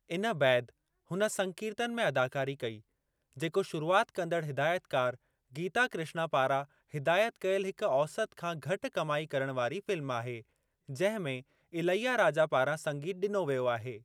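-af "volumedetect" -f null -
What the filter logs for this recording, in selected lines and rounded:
mean_volume: -32.6 dB
max_volume: -12.7 dB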